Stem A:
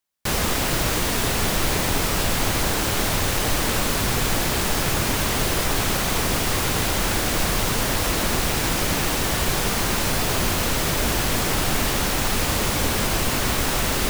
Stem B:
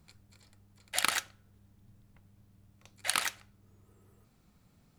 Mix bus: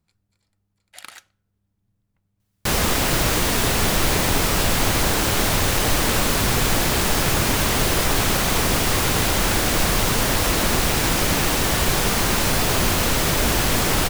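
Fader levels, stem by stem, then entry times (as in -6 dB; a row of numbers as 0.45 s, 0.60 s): +2.5 dB, -11.0 dB; 2.40 s, 0.00 s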